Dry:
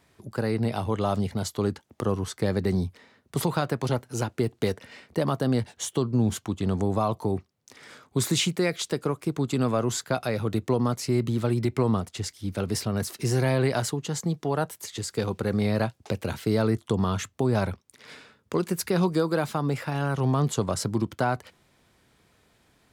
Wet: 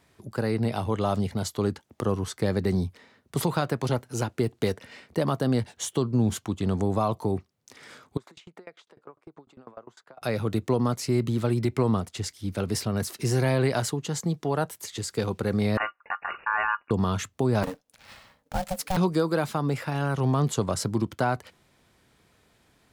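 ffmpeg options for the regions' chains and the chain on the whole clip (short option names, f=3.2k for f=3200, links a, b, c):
-filter_complex "[0:a]asettb=1/sr,asplit=3[a][b][c];[a]atrim=end=8.174[d];[b]atrim=start=8.17:end=10.22,asetpts=PTS-STARTPTS,afade=t=in:d=0.004:c=qsin,afade=t=out:st=2.046:d=0.004:c=qsin,acompressor=threshold=-31dB:ratio=3:attack=3.2:release=140:knee=1:detection=peak,bandpass=f=860:t=q:w=0.87,aeval=exprs='val(0)*pow(10,-27*if(lt(mod(10*n/s,1),2*abs(10)/1000),1-mod(10*n/s,1)/(2*abs(10)/1000),(mod(10*n/s,1)-2*abs(10)/1000)/(1-2*abs(10)/1000))/20)':c=same[e];[c]atrim=start=10.216[f];[d][e]acrossfade=d=0.004:c1=hsin:c2=qsin[g];[g][f]acrossfade=d=0.004:c1=qsin:c2=hsin,asettb=1/sr,asplit=3[h][i][j];[h]atrim=end=15.774[k];[i]atrim=start=15.77:end=16.91,asetpts=PTS-STARTPTS,afade=t=in:d=0.004:c=qsin,afade=t=out:st=1.136:d=0.004:c=qsin,aeval=exprs='val(0)*sin(2*PI*1600*n/s)':c=same,lowpass=f=2.5k:t=q:w=0.5098,lowpass=f=2.5k:t=q:w=0.6013,lowpass=f=2.5k:t=q:w=0.9,lowpass=f=2.5k:t=q:w=2.563,afreqshift=-2900[l];[j]atrim=start=16.906[m];[k][l]acrossfade=d=0.004:c1=hsin:c2=qsin[n];[n][m]acrossfade=d=0.004:c1=qsin:c2=hsin,asettb=1/sr,asplit=3[o][p][q];[o]atrim=end=17.634[r];[p]atrim=start=17.63:end=18.97,asetpts=PTS-STARTPTS,afade=t=in:d=0.004:c=qsin,afade=t=out:st=1.336:d=0.004:c=qsin,acrusher=bits=3:mode=log:mix=0:aa=0.000001,aeval=exprs='val(0)*sin(2*PI*370*n/s)':c=same[s];[q]atrim=start=18.966[t];[r][s]acrossfade=d=0.004:c1=hsin:c2=qsin[u];[u][t]acrossfade=d=0.004:c1=qsin:c2=hsin"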